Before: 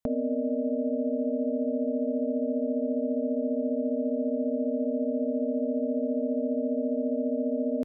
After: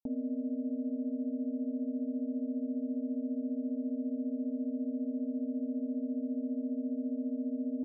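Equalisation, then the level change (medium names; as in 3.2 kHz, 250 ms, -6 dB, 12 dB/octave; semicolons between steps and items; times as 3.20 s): cascade formant filter u; dynamic bell 780 Hz, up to +4 dB, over -55 dBFS; 0.0 dB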